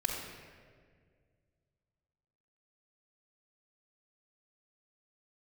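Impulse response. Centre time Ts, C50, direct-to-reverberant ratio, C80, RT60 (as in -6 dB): 72 ms, 2.0 dB, -1.0 dB, 3.5 dB, 1.9 s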